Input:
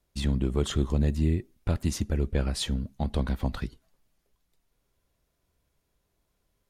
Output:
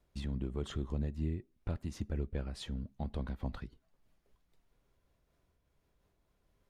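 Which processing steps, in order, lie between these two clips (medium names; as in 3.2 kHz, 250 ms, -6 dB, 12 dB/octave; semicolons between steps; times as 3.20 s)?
compression 1.5:1, threshold -56 dBFS, peak gain reduction 12.5 dB; treble shelf 4.3 kHz -11 dB; random flutter of the level, depth 55%; trim +3.5 dB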